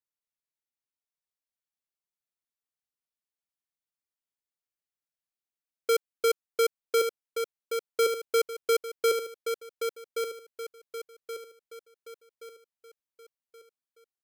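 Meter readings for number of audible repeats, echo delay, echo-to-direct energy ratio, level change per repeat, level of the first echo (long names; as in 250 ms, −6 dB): 4, 1,125 ms, −5.5 dB, −7.5 dB, −6.5 dB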